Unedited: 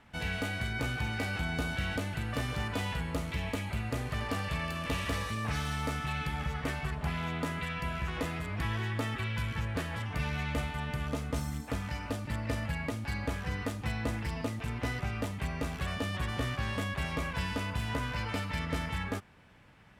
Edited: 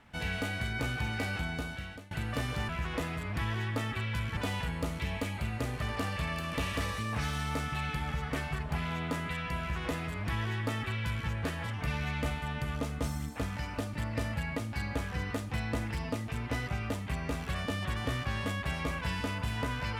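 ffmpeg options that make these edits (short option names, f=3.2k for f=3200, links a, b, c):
-filter_complex "[0:a]asplit=4[a][b][c][d];[a]atrim=end=2.11,asetpts=PTS-STARTPTS,afade=t=out:st=1.32:d=0.79:silence=0.0749894[e];[b]atrim=start=2.11:end=2.692,asetpts=PTS-STARTPTS,afade=t=in:d=0.004:c=hsin:silence=0.0749894[f];[c]atrim=start=7.918:end=9.602[g];[d]atrim=start=2.688[h];[e][f]concat=n=2:v=0:a=1[i];[i][g]acrossfade=d=0.004:c1=hsin:c2=hsin[j];[j][h]acrossfade=d=0.004:c1=hsin:c2=hsin"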